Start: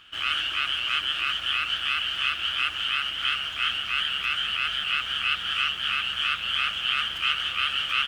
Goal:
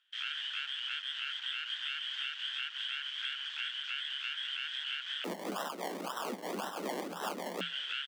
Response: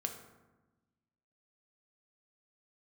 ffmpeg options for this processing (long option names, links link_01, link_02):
-filter_complex "[0:a]afwtdn=0.0141,highpass=780,acompressor=threshold=-28dB:ratio=6,asettb=1/sr,asplit=3[link_01][link_02][link_03];[link_01]atrim=end=5.244[link_04];[link_02]atrim=start=5.24:end=7.61,asetpts=PTS-STARTPTS,afade=type=in:duration=0.004:curve=qsin,afade=type=out:start_time=2.366:duration=0.004:curve=qsin,acrusher=samples=29:mix=1:aa=0.000001:lfo=1:lforange=17.4:lforate=1.9[link_05];[link_03]atrim=start=7.606[link_06];[link_04][link_05]acrossfade=duration=0.004:curve1=hsin:curve2=qsin[link_07];[link_07][link_06]acrossfade=duration=0.004:curve1=qsin:curve2=hsin,afreqshift=170,asplit=2[link_08][link_09];[link_09]adelay=320,highpass=300,lowpass=3400,asoftclip=type=hard:threshold=-25.5dB,volume=-27dB[link_10];[link_08][link_10]amix=inputs=2:normalize=0,volume=-6.5dB"